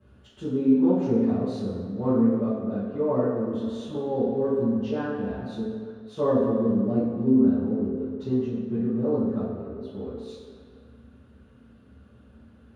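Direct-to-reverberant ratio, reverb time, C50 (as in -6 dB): -13.5 dB, 2.1 s, -1.0 dB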